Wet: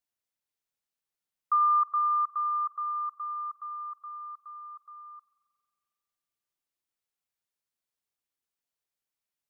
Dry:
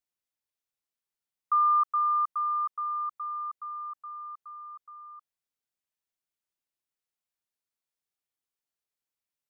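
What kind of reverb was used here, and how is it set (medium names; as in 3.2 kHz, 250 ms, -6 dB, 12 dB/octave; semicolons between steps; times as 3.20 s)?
spring tank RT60 2.1 s, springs 44 ms, chirp 45 ms, DRR 14 dB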